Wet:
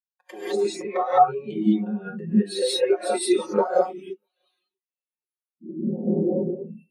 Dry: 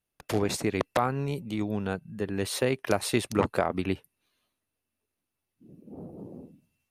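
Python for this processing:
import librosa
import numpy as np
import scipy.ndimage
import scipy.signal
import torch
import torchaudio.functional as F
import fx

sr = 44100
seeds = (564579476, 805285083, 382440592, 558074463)

y = fx.recorder_agc(x, sr, target_db=-17.0, rise_db_per_s=78.0, max_gain_db=30)
y = fx.highpass(y, sr, hz=890.0, slope=6)
y = y + 0.65 * np.pad(y, (int(5.5 * sr / 1000.0), 0))[:len(y)]
y = fx.sample_hold(y, sr, seeds[0], rate_hz=5700.0, jitter_pct=0, at=(3.52, 3.94))
y = y + 10.0 ** (-23.0 / 20.0) * np.pad(y, (int(643 * sr / 1000.0), 0))[:len(y)]
y = fx.rev_gated(y, sr, seeds[1], gate_ms=230, shape='rising', drr_db=-5.0)
y = fx.spectral_expand(y, sr, expansion=2.5)
y = y * 10.0 ** (-1.5 / 20.0)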